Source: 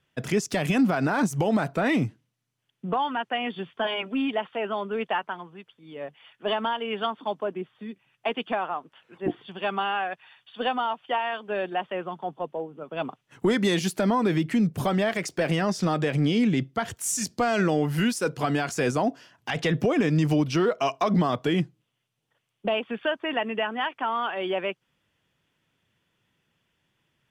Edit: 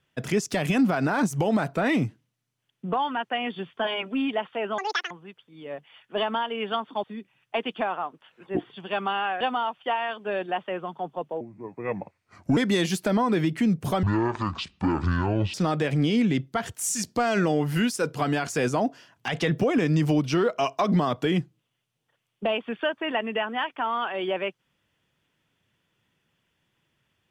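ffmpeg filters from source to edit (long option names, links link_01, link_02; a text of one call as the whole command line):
ffmpeg -i in.wav -filter_complex "[0:a]asplit=9[link_01][link_02][link_03][link_04][link_05][link_06][link_07][link_08][link_09];[link_01]atrim=end=4.784[link_10];[link_02]atrim=start=4.78:end=5.41,asetpts=PTS-STARTPTS,asetrate=85113,aresample=44100,atrim=end_sample=14395,asetpts=PTS-STARTPTS[link_11];[link_03]atrim=start=5.406:end=7.342[link_12];[link_04]atrim=start=7.748:end=10.122[link_13];[link_05]atrim=start=10.638:end=12.644[link_14];[link_06]atrim=start=12.64:end=13.5,asetpts=PTS-STARTPTS,asetrate=32634,aresample=44100,atrim=end_sample=51251,asetpts=PTS-STARTPTS[link_15];[link_07]atrim=start=13.496:end=14.964[link_16];[link_08]atrim=start=14.96:end=15.76,asetpts=PTS-STARTPTS,asetrate=23373,aresample=44100,atrim=end_sample=66566,asetpts=PTS-STARTPTS[link_17];[link_09]atrim=start=15.756[link_18];[link_10][link_11]acrossfade=duration=0.004:curve1=hsin:curve2=hsin[link_19];[link_19][link_12]acrossfade=duration=0.004:curve1=hsin:curve2=hsin[link_20];[link_20][link_13]acrossfade=duration=0.004:curve1=hsin:curve2=hsin[link_21];[link_21][link_14]acrossfade=duration=0.004:curve1=hsin:curve2=hsin[link_22];[link_22][link_15]acrossfade=duration=0.004:curve1=hsin:curve2=hsin[link_23];[link_23][link_16]acrossfade=duration=0.004:curve1=hsin:curve2=hsin[link_24];[link_24][link_17]acrossfade=duration=0.004:curve1=hsin:curve2=hsin[link_25];[link_25][link_18]acrossfade=duration=0.004:curve1=hsin:curve2=hsin" out.wav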